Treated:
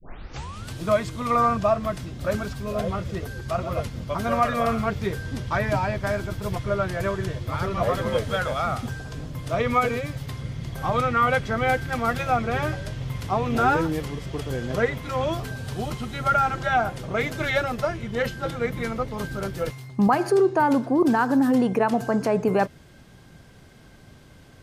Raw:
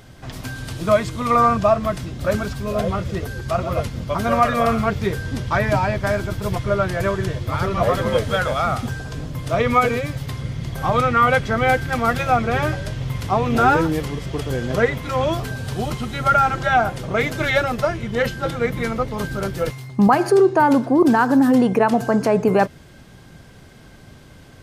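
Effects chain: tape start-up on the opening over 0.72 s; trim -5 dB

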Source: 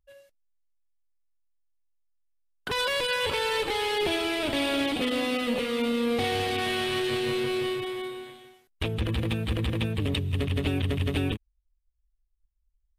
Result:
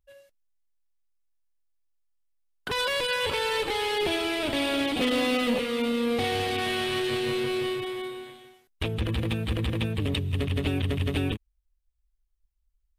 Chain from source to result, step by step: 4.97–5.58 s: waveshaping leveller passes 1

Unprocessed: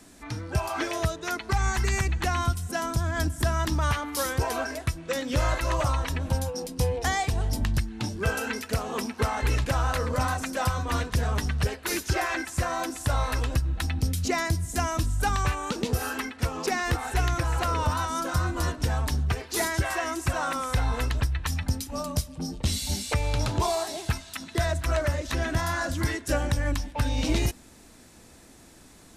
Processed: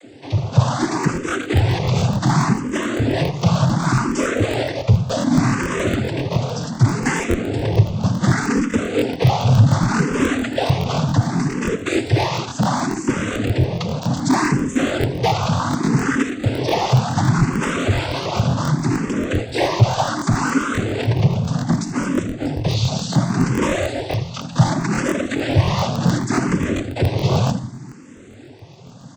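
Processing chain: square wave that keeps the level; feedback delay 81 ms, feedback 36%, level -12 dB; on a send at -9 dB: reverberation RT60 0.60 s, pre-delay 7 ms; on the sum: noise-vocoded speech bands 16; vibrato 1.6 Hz 29 cents; hard clipper -16 dBFS, distortion -18 dB; bass shelf 390 Hz +9 dB; crackling interface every 0.14 s, samples 1024, repeat, from 0.99 s; barber-pole phaser +0.67 Hz; trim +4.5 dB

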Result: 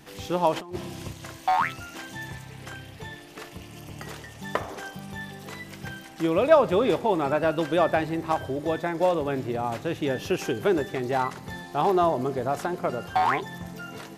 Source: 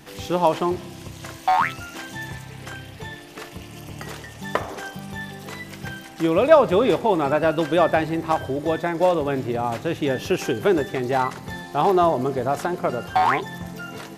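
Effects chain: 0.56–1.13 s: compressor with a negative ratio -28 dBFS, ratio -0.5; trim -4 dB

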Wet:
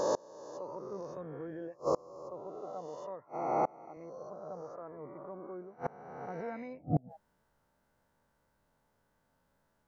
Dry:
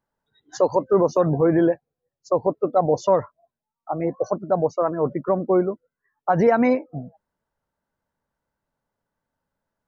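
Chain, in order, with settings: reverse spectral sustain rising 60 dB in 1.64 s; inverted gate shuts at -20 dBFS, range -30 dB; 2.56–3.97 s: high-pass 170 Hz 12 dB/octave; trim +3 dB

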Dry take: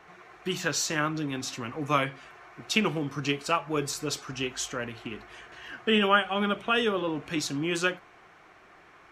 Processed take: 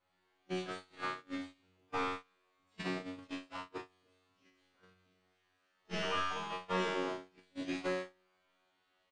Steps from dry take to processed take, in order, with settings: one-bit delta coder 32 kbps, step -33 dBFS; Chebyshev low-pass 4.7 kHz, order 10; harmony voices -4 st -2 dB, +7 st -11 dB, +12 st -9 dB; feedback comb 92 Hz, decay 1.2 s, harmonics all, mix 100%; gate -42 dBFS, range -29 dB; trim +5 dB

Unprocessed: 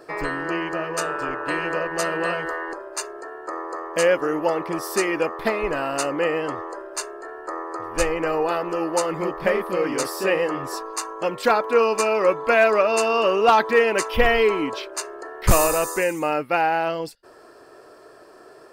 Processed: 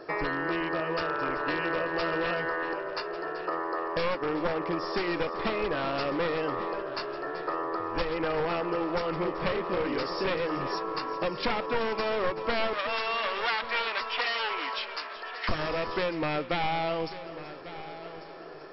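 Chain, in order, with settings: one-sided wavefolder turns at -19.5 dBFS; 12.73–15.49 s: high-pass 960 Hz 12 dB/octave; compression 3:1, threshold -29 dBFS, peak gain reduction 13 dB; brick-wall FIR low-pass 5.6 kHz; multi-head delay 382 ms, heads first and third, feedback 43%, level -15 dB; trim +1 dB

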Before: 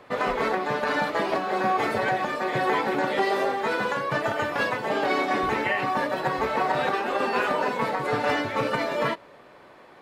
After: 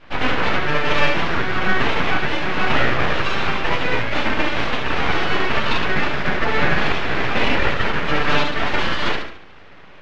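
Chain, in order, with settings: bass shelf 450 Hz -11.5 dB; on a send: thinning echo 72 ms, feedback 40%, high-pass 450 Hz, level -5 dB; on the sum: FDN reverb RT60 0.45 s, high-frequency decay 0.45×, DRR -8 dB; full-wave rectifier; distance through air 180 m; trim +2.5 dB

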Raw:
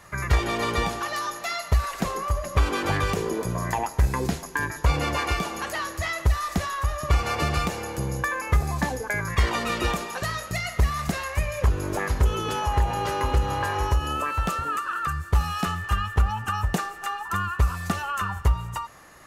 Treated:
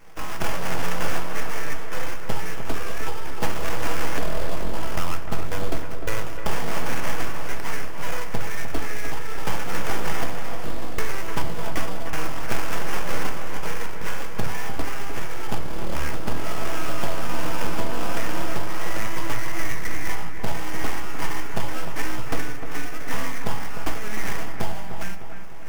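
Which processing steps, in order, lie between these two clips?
high-pass 120 Hz 12 dB/octave; reverse; upward compressor, threshold -39 dBFS; reverse; tape speed -25%; sample-rate reducer 4 kHz, jitter 20%; full-wave rectifier; feedback echo behind a low-pass 302 ms, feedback 49%, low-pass 2.3 kHz, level -8 dB; simulated room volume 180 m³, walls furnished, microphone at 0.66 m

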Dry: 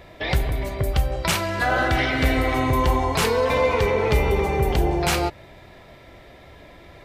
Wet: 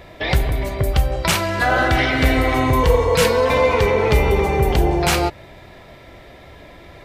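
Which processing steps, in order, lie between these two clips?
spectral replace 2.86–3.30 s, 250–1300 Hz after; trim +4 dB

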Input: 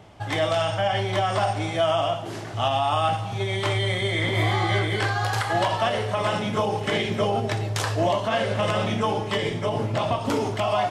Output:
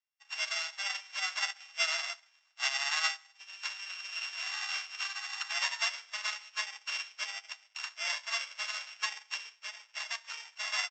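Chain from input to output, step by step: sorted samples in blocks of 16 samples; high-pass 1.1 kHz 24 dB/octave; treble shelf 3 kHz +7.5 dB; echo from a far wall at 23 m, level -14 dB; on a send at -15 dB: reverberation RT60 0.35 s, pre-delay 4 ms; on the sum: resampled via 16 kHz; upward expansion 2.5:1, over -46 dBFS; trim -5.5 dB

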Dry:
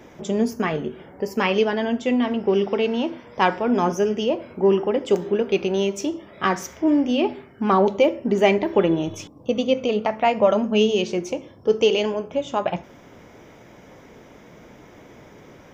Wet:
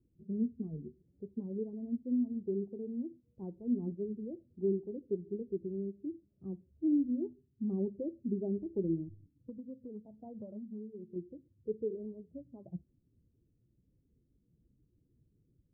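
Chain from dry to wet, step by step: expander on every frequency bin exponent 1.5; inverse Chebyshev low-pass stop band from 2.1 kHz, stop band 80 dB; 9.03–11.16 s: compression 6:1, threshold -34 dBFS, peak gain reduction 13.5 dB; trim -8.5 dB

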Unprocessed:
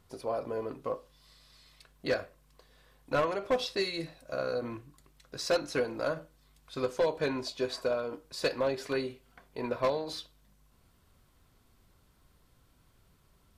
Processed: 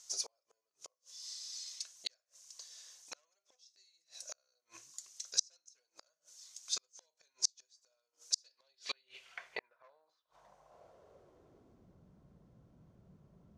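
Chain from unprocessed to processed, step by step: fifteen-band graphic EQ 250 Hz -9 dB, 630 Hz +6 dB, 6.3 kHz +12 dB; inverted gate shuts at -27 dBFS, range -42 dB; band-pass sweep 6.2 kHz -> 210 Hz, 8.30–11.99 s; trim +15 dB

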